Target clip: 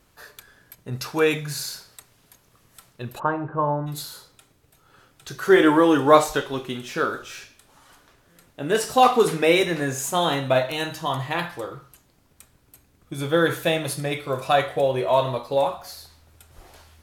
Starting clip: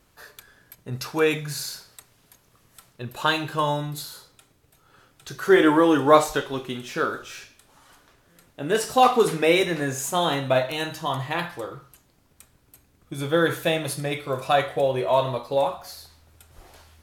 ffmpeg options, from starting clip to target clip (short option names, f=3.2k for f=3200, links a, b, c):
-filter_complex "[0:a]asplit=3[a][b][c];[a]afade=t=out:st=3.18:d=0.02[d];[b]lowpass=f=1.3k:w=0.5412,lowpass=f=1.3k:w=1.3066,afade=t=in:st=3.18:d=0.02,afade=t=out:st=3.86:d=0.02[e];[c]afade=t=in:st=3.86:d=0.02[f];[d][e][f]amix=inputs=3:normalize=0,volume=1dB"